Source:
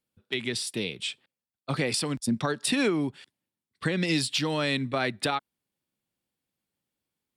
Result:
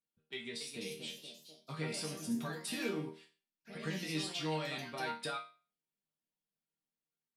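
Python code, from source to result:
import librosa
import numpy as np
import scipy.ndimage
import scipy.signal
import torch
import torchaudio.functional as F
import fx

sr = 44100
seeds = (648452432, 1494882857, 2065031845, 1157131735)

y = fx.echo_pitch(x, sr, ms=316, semitones=2, count=3, db_per_echo=-6.0)
y = fx.resonator_bank(y, sr, root=51, chord='major', decay_s=0.35)
y = y * librosa.db_to_amplitude(3.5)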